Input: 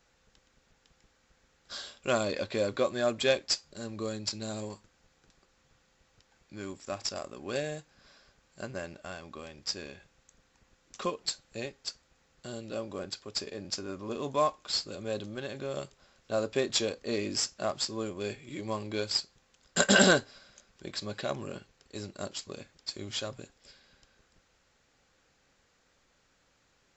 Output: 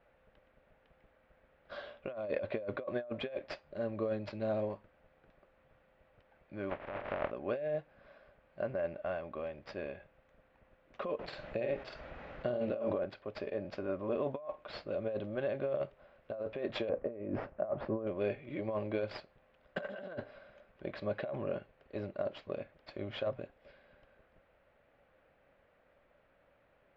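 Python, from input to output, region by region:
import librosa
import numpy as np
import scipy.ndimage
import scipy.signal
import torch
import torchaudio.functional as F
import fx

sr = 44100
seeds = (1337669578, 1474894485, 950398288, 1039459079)

y = fx.spec_flatten(x, sr, power=0.17, at=(6.69, 7.3), fade=0.02)
y = fx.lowpass(y, sr, hz=2000.0, slope=12, at=(6.69, 7.3), fade=0.02)
y = fx.over_compress(y, sr, threshold_db=-47.0, ratio=-1.0, at=(6.69, 7.3), fade=0.02)
y = fx.chain(y, sr, fx.doubler(ms=49.0, db=-5),
    fx.env_flatten(amount_pct=50), at=(11.19, 12.98))
y = fx.chain(y, sr, fx.lowpass(hz=1300.0, slope=12),
    fx.low_shelf(hz=370.0, db=3.0),
    fx.over_compress(threshold_db=-37.0, ratio=-0.5), at=(16.89, 18.07))
y = scipy.signal.sosfilt(scipy.signal.butter(4, 2600.0, 'lowpass', fs=sr, output='sos'), y)
y = fx.peak_eq(y, sr, hz=600.0, db=12.5, octaves=0.47)
y = fx.over_compress(y, sr, threshold_db=-30.0, ratio=-1.0)
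y = F.gain(torch.from_numpy(y), -6.0).numpy()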